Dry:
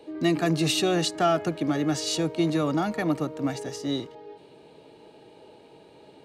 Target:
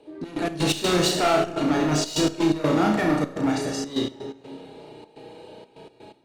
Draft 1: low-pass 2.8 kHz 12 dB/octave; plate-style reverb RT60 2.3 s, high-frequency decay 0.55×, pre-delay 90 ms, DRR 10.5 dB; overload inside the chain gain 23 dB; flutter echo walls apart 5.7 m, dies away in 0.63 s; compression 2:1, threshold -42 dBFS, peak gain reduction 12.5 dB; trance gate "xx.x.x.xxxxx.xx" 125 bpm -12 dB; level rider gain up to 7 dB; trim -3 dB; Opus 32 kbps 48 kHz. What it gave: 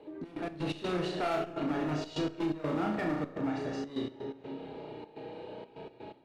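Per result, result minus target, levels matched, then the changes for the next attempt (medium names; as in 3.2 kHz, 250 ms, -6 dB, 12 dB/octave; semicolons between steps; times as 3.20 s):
compression: peak gain reduction +12.5 dB; 8 kHz band -12.5 dB
remove: compression 2:1, threshold -42 dBFS, peak gain reduction 12.5 dB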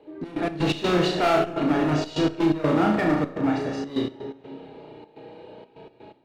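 8 kHz band -13.0 dB
change: low-pass 11 kHz 12 dB/octave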